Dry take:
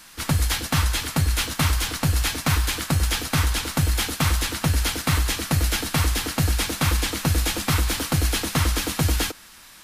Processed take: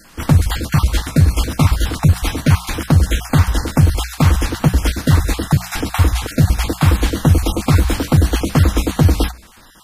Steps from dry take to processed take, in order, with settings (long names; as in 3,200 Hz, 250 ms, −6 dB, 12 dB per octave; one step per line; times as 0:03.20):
time-frequency cells dropped at random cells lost 24%
tilt shelving filter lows +6 dB, about 1,100 Hz
mains-hum notches 60/120/180 Hz
level +5.5 dB